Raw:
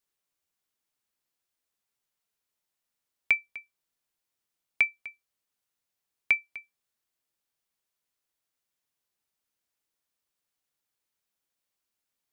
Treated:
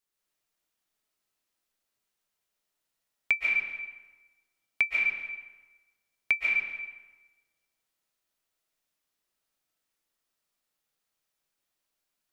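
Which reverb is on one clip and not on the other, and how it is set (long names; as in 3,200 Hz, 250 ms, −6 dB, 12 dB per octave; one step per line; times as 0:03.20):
comb and all-pass reverb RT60 1.2 s, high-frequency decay 0.75×, pre-delay 100 ms, DRR −4 dB
level −2 dB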